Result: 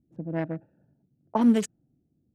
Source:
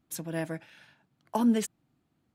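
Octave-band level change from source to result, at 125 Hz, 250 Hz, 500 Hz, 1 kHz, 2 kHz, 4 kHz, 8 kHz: +4.0 dB, +4.0 dB, +3.0 dB, +3.0 dB, -0.5 dB, -0.5 dB, -4.0 dB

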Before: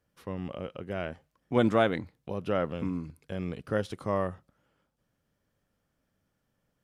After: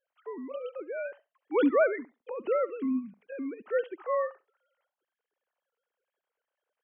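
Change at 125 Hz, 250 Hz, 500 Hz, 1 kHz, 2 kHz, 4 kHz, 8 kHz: under -25 dB, -0.5 dB, +2.0 dB, -1.5 dB, 0.0 dB, under -10 dB, no reading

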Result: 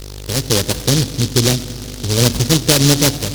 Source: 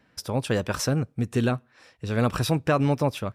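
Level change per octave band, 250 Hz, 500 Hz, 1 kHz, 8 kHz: +8.0 dB, +6.5 dB, +2.5 dB, +20.0 dB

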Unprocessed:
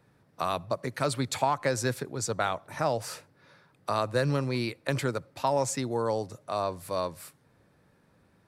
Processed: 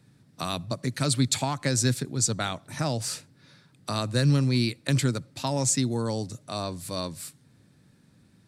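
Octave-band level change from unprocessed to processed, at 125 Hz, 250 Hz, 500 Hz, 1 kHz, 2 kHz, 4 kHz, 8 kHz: +7.5 dB, +6.5 dB, -3.5 dB, -4.5 dB, 0.0 dB, +7.5 dB, +9.0 dB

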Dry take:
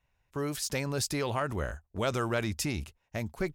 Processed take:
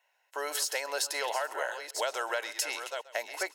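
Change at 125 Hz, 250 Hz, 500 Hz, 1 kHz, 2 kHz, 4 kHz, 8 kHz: under -40 dB, -19.0 dB, -1.5 dB, +2.0 dB, +3.5 dB, +3.5 dB, +3.0 dB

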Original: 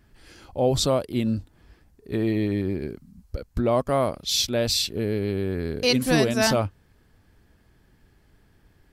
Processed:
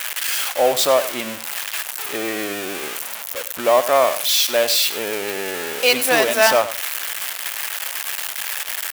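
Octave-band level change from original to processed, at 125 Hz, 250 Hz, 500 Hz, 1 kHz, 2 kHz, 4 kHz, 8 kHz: -17.5 dB, -6.0 dB, +6.0 dB, +9.5 dB, +11.5 dB, +7.0 dB, +9.5 dB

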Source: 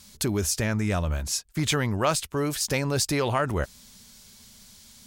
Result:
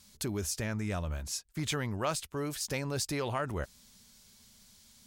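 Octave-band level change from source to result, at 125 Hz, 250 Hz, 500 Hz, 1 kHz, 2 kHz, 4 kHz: -8.5 dB, -8.5 dB, -8.5 dB, -8.5 dB, -8.5 dB, -8.5 dB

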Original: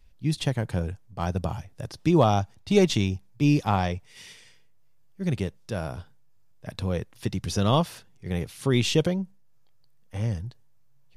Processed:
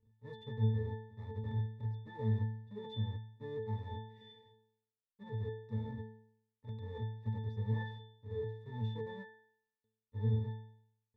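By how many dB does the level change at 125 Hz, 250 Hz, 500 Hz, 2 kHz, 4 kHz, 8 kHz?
-9.0 dB, -18.5 dB, -16.5 dB, -17.0 dB, -22.0 dB, under -40 dB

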